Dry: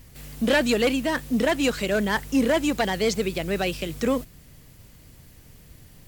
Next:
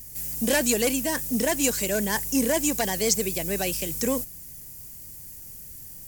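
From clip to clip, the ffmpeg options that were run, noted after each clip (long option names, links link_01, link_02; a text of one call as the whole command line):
ffmpeg -i in.wav -af "bandreject=frequency=1300:width=5.2,aexciter=amount=7.7:drive=1.5:freq=5300,volume=-3dB" out.wav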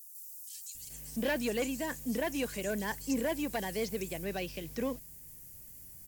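ffmpeg -i in.wav -filter_complex "[0:a]acrossover=split=5100[link_01][link_02];[link_01]adelay=750[link_03];[link_03][link_02]amix=inputs=2:normalize=0,acrossover=split=4300[link_04][link_05];[link_05]acompressor=threshold=-35dB:ratio=4:attack=1:release=60[link_06];[link_04][link_06]amix=inputs=2:normalize=0,volume=-8dB" out.wav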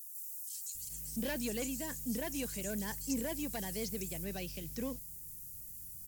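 ffmpeg -i in.wav -af "bass=frequency=250:gain=9,treble=frequency=4000:gain=11,volume=-8dB" out.wav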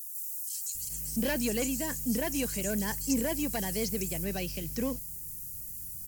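ffmpeg -i in.wav -af "bandreject=frequency=3600:width=8,volume=7dB" out.wav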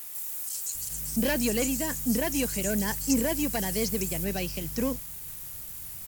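ffmpeg -i in.wav -af "aeval=exprs='sgn(val(0))*max(abs(val(0))-0.00422,0)':channel_layout=same,volume=4.5dB" out.wav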